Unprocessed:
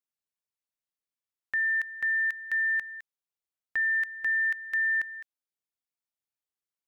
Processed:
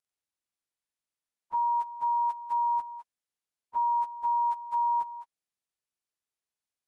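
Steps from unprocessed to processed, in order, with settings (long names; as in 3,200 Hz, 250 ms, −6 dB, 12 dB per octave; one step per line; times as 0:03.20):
phase-vocoder pitch shift without resampling −11 semitones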